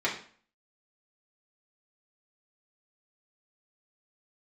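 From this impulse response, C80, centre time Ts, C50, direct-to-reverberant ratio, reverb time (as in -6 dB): 12.0 dB, 24 ms, 8.0 dB, -5.5 dB, 0.45 s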